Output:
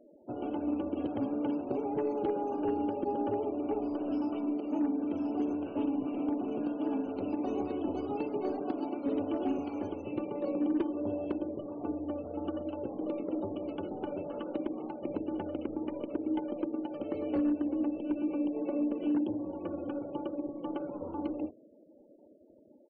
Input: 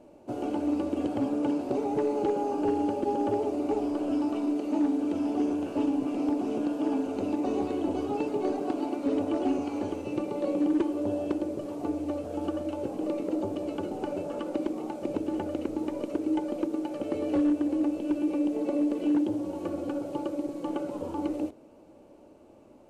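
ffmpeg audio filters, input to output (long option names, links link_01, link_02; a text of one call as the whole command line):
ffmpeg -i in.wav -filter_complex "[0:a]asplit=2[link_01][link_02];[link_02]asetrate=35002,aresample=44100,atempo=1.25992,volume=-17dB[link_03];[link_01][link_03]amix=inputs=2:normalize=0,afftfilt=real='re*gte(hypot(re,im),0.00501)':imag='im*gte(hypot(re,im),0.00501)':win_size=1024:overlap=0.75,volume=-4.5dB" out.wav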